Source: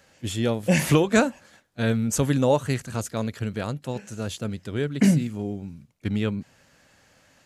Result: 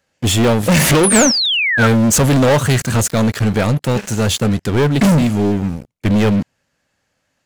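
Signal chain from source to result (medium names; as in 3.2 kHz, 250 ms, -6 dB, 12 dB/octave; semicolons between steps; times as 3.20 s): waveshaping leveller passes 5; painted sound fall, 1.03–1.87 s, 1.3–11 kHz -16 dBFS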